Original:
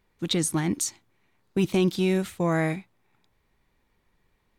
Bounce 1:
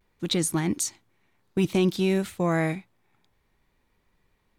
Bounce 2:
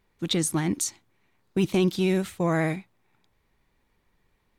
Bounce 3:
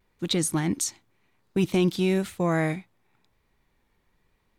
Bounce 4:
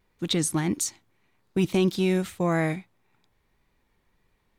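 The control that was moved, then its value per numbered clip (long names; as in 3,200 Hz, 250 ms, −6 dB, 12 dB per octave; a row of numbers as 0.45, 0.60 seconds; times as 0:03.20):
pitch vibrato, speed: 0.55, 15, 0.97, 1.7 Hertz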